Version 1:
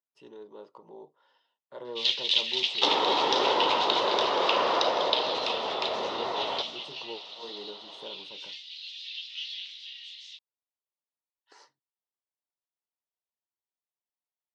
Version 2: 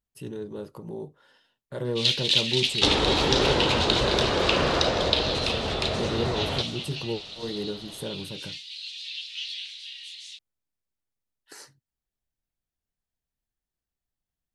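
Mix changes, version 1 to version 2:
speech +5.5 dB; master: remove cabinet simulation 470–5100 Hz, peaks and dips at 960 Hz +7 dB, 1.6 kHz -7 dB, 2.4 kHz -5 dB, 4.3 kHz -5 dB

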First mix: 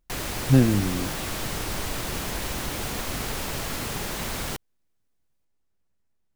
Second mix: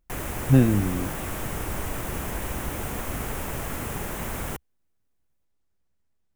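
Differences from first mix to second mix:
background: add peaking EQ 4.4 kHz -14 dB 1 oct; master: add peaking EQ 68 Hz +4 dB 0.64 oct

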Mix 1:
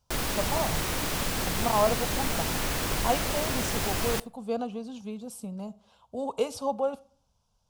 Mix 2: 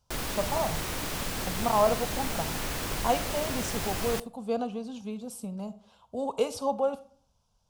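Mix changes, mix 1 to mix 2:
speech: send +6.0 dB; background -3.5 dB

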